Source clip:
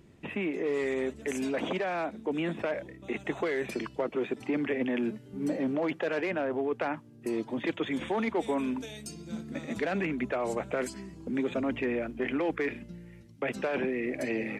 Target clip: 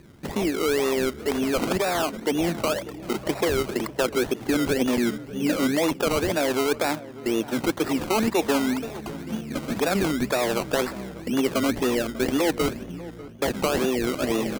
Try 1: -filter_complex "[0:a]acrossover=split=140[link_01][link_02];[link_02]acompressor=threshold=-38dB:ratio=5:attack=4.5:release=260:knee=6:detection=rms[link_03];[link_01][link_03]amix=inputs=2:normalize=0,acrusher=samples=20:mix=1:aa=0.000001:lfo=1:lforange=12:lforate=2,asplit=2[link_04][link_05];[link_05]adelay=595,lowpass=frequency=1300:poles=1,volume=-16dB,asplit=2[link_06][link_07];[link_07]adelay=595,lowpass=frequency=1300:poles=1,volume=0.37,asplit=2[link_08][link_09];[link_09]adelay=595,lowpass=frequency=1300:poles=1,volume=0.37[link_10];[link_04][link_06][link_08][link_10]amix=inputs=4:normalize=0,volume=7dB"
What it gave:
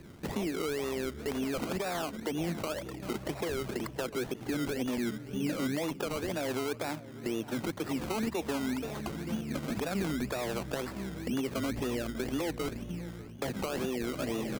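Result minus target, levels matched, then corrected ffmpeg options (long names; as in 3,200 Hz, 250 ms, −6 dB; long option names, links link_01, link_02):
downward compressor: peak gain reduction +13.5 dB
-filter_complex "[0:a]acrusher=samples=20:mix=1:aa=0.000001:lfo=1:lforange=12:lforate=2,asplit=2[link_01][link_02];[link_02]adelay=595,lowpass=frequency=1300:poles=1,volume=-16dB,asplit=2[link_03][link_04];[link_04]adelay=595,lowpass=frequency=1300:poles=1,volume=0.37,asplit=2[link_05][link_06];[link_06]adelay=595,lowpass=frequency=1300:poles=1,volume=0.37[link_07];[link_01][link_03][link_05][link_07]amix=inputs=4:normalize=0,volume=7dB"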